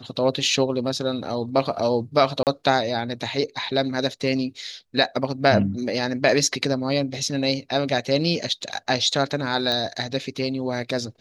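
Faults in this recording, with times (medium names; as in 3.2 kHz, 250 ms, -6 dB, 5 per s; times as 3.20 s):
2.43–2.47 s: dropout 38 ms
9.72 s: pop -13 dBFS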